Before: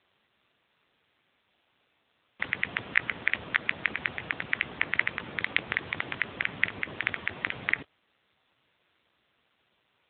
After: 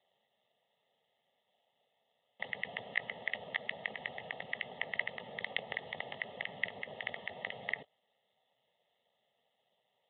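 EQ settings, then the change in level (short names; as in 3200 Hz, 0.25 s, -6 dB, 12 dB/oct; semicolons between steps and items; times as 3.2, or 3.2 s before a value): BPF 240–2500 Hz; Butterworth band-stop 1500 Hz, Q 1.7; fixed phaser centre 1600 Hz, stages 8; +1.0 dB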